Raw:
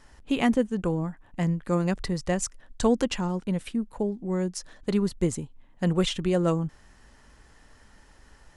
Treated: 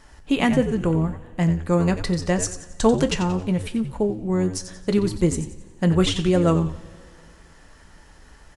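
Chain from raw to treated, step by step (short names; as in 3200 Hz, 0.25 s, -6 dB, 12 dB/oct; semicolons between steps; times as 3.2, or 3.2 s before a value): frequency-shifting echo 90 ms, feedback 37%, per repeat -88 Hz, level -11 dB; reverb, pre-delay 3 ms, DRR 9 dB; gain +4.5 dB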